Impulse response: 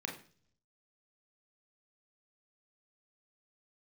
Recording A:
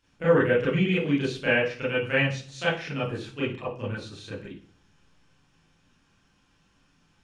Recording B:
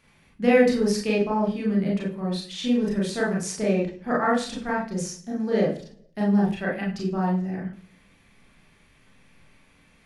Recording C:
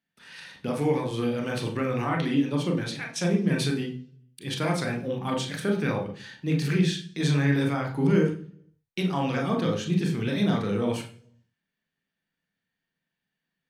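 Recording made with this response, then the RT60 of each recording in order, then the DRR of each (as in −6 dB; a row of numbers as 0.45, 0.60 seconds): C; 0.45, 0.45, 0.45 seconds; −9.0, −4.0, 1.5 decibels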